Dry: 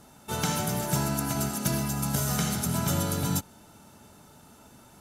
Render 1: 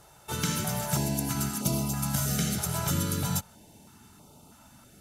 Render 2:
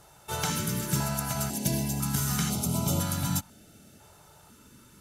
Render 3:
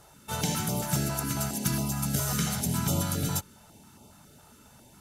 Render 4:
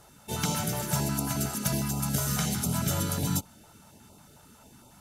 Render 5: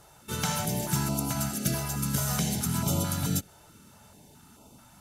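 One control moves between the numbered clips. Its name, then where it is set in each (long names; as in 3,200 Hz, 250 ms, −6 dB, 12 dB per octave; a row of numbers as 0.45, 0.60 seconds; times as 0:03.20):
notch on a step sequencer, speed: 3.1, 2, 7.3, 11, 4.6 Hertz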